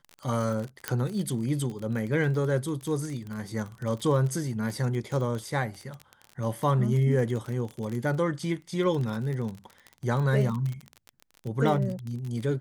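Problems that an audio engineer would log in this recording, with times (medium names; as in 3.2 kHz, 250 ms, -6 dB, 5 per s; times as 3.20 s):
crackle 28 per s -31 dBFS
0.88 s: pop -10 dBFS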